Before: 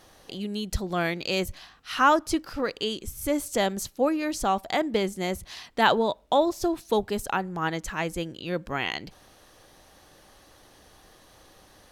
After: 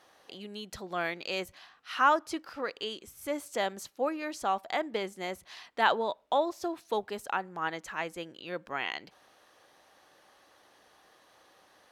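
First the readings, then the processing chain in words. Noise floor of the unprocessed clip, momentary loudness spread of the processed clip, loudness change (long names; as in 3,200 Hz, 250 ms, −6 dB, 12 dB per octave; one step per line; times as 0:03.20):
−56 dBFS, 15 LU, −5.5 dB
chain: high-pass filter 930 Hz 6 dB per octave
high-shelf EQ 3,300 Hz −12 dB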